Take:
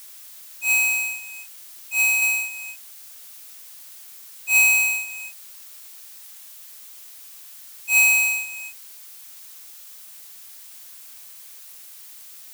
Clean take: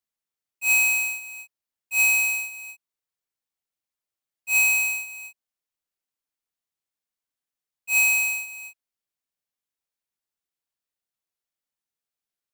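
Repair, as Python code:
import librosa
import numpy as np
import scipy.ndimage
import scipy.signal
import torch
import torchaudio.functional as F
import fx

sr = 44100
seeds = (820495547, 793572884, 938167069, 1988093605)

y = fx.noise_reduce(x, sr, print_start_s=10.24, print_end_s=10.74, reduce_db=30.0)
y = fx.fix_level(y, sr, at_s=2.22, step_db=-3.5)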